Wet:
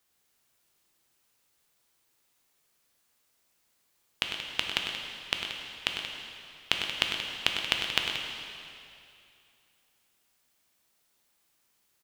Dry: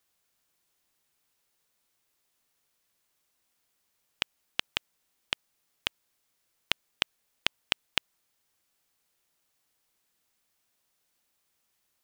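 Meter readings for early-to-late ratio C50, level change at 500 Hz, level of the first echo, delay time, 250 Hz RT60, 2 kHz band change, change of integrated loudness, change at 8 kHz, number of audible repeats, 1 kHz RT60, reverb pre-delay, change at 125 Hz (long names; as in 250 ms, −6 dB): 1.0 dB, +4.0 dB, −8.5 dB, 101 ms, 2.5 s, +4.0 dB, +2.5 dB, +4.0 dB, 2, 2.6 s, 5 ms, +4.5 dB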